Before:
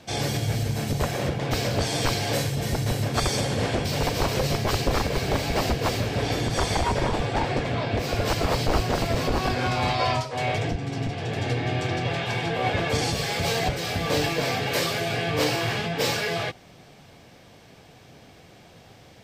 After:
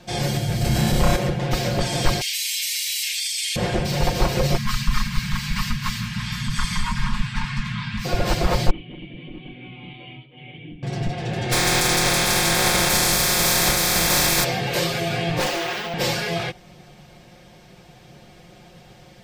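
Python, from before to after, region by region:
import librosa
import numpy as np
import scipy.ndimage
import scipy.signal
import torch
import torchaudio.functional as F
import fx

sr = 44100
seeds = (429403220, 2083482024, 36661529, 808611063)

y = fx.chain(x, sr, fx.room_flutter(wall_m=5.4, rt60_s=0.62),
    fx.env_flatten(amount_pct=70), at=(0.61, 1.16))
y = fx.chain(y, sr, fx.steep_highpass(hz=2200.0, slope=48),
    fx.peak_eq(hz=13000.0, db=3.0, octaves=1.7),
    fx.env_flatten(amount_pct=100), at=(2.21, 3.56))
y = fx.chain(y, sr, fx.cheby1_bandstop(low_hz=230.0, high_hz=1000.0, order=4),
    fx.peak_eq(hz=76.0, db=-8.5, octaves=0.96), at=(4.57, 8.05))
y = fx.chain(y, sr, fx.formant_cascade(vowel='i'),
    fx.tilt_eq(slope=2.5),
    fx.comb(ms=6.6, depth=0.44), at=(8.7, 10.83))
y = fx.spec_flatten(y, sr, power=0.27, at=(11.51, 14.43), fade=0.02)
y = fx.notch(y, sr, hz=2900.0, q=5.8, at=(11.51, 14.43), fade=0.02)
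y = fx.env_flatten(y, sr, amount_pct=70, at=(11.51, 14.43), fade=0.02)
y = fx.chain(y, sr, fx.highpass(hz=350.0, slope=12),
    fx.resample_bad(factor=2, down='filtered', up='hold'),
    fx.doppler_dist(depth_ms=0.48), at=(15.39, 15.94))
y = fx.low_shelf(y, sr, hz=92.0, db=9.0)
y = y + 0.72 * np.pad(y, (int(5.6 * sr / 1000.0), 0))[:len(y)]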